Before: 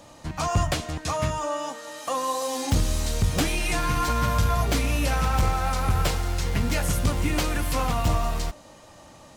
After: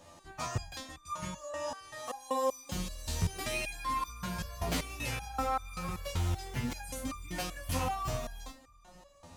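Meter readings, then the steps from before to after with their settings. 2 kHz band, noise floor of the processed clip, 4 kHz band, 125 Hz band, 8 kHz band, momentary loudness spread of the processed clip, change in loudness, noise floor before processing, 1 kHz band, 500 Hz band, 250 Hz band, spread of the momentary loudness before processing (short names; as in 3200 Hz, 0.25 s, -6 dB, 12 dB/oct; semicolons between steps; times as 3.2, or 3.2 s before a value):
-10.0 dB, -59 dBFS, -10.0 dB, -12.5 dB, -10.0 dB, 9 LU, -11.0 dB, -49 dBFS, -9.0 dB, -9.0 dB, -11.0 dB, 6 LU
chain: darkening echo 0.626 s, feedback 52%, level -21.5 dB; stepped resonator 5.2 Hz 85–1200 Hz; gain +3 dB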